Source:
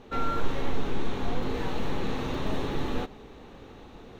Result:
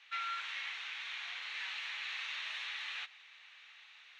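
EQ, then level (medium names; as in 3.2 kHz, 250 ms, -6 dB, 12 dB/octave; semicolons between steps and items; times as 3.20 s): ladder high-pass 1.8 kHz, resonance 40%; distance through air 92 m; +9.0 dB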